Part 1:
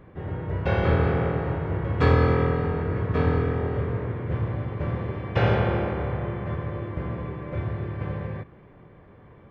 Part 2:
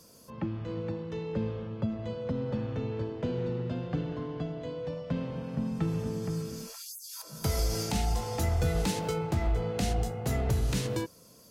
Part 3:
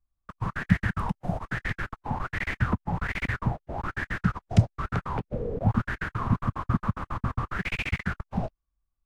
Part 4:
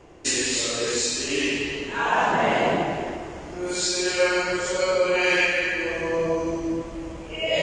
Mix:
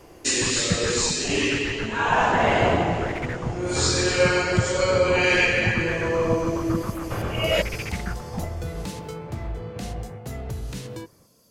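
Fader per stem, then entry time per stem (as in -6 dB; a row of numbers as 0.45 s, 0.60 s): -9.0 dB, -4.0 dB, -3.5 dB, +1.0 dB; 1.75 s, 0.00 s, 0.00 s, 0.00 s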